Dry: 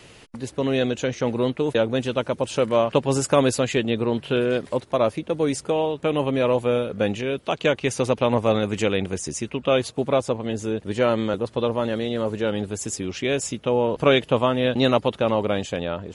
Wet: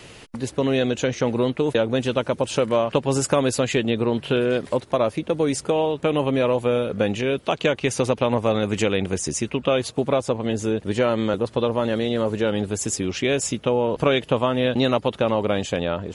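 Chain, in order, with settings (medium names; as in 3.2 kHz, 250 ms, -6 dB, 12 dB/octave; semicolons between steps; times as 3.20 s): compression 2.5:1, threshold -22 dBFS, peak gain reduction 7 dB; trim +4 dB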